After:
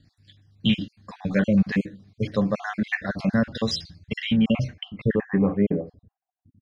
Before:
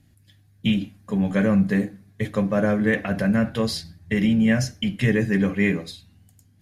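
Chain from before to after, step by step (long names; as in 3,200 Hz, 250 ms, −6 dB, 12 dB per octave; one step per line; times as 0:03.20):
time-frequency cells dropped at random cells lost 43%
low-pass filter sweep 4,800 Hz → 240 Hz, 0:04.06–0:06.60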